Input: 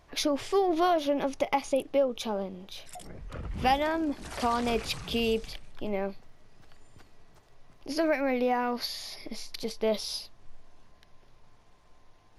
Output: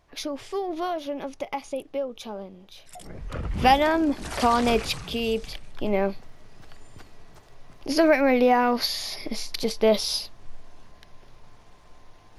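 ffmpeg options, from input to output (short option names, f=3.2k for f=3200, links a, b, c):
-af "volume=15dB,afade=t=in:st=2.84:d=0.44:silence=0.281838,afade=t=out:st=4.7:d=0.48:silence=0.446684,afade=t=in:st=5.18:d=0.83:silence=0.398107"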